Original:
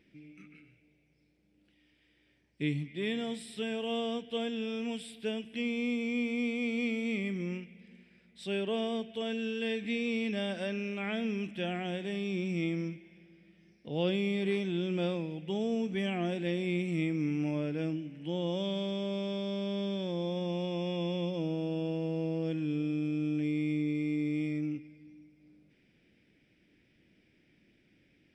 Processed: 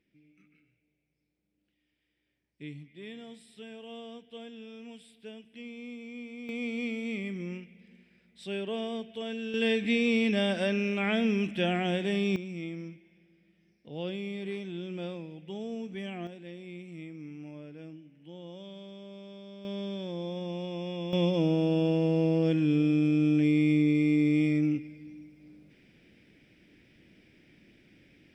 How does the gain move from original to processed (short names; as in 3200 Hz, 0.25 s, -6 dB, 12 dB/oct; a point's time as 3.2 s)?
-10.5 dB
from 6.49 s -1.5 dB
from 9.54 s +6.5 dB
from 12.36 s -5.5 dB
from 16.27 s -12 dB
from 19.65 s -2 dB
from 21.13 s +7.5 dB